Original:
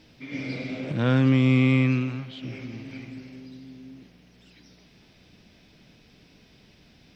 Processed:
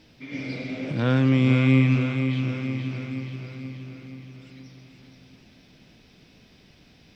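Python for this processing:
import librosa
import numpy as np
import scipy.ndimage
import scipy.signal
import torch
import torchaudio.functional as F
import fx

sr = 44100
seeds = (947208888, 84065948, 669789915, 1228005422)

y = fx.echo_feedback(x, sr, ms=477, feedback_pct=57, wet_db=-7.0)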